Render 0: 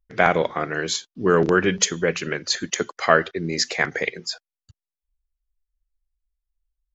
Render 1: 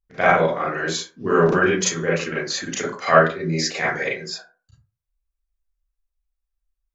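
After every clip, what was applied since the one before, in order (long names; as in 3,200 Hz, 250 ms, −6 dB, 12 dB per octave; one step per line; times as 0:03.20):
convolution reverb RT60 0.35 s, pre-delay 28 ms, DRR −8 dB
level −7 dB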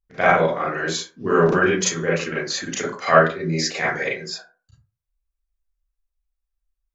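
no processing that can be heard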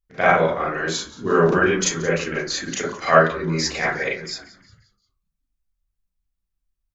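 echo with shifted repeats 177 ms, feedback 45%, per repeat −92 Hz, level −19 dB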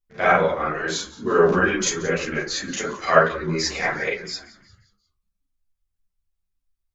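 string-ensemble chorus
level +2 dB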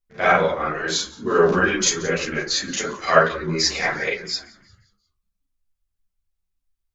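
dynamic equaliser 4,600 Hz, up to +6 dB, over −37 dBFS, Q 0.94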